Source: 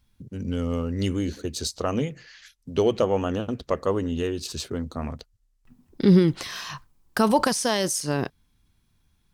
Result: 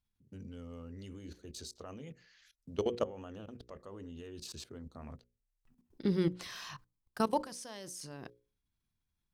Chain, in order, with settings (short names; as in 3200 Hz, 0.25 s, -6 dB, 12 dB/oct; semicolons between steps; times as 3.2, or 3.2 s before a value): level quantiser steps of 19 dB; notches 60/120/180/240/300/360/420/480/540 Hz; gain -8 dB